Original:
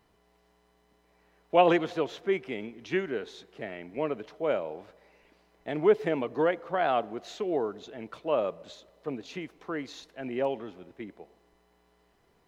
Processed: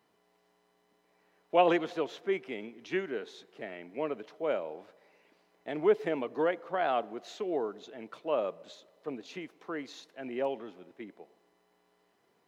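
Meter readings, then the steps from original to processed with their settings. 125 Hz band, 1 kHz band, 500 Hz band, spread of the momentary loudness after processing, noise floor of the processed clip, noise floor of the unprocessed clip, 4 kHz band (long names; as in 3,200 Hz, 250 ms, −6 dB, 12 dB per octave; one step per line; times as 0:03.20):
−7.5 dB, −3.0 dB, −3.0 dB, 19 LU, −72 dBFS, −68 dBFS, −3.0 dB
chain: high-pass filter 190 Hz 12 dB per octave
level −3 dB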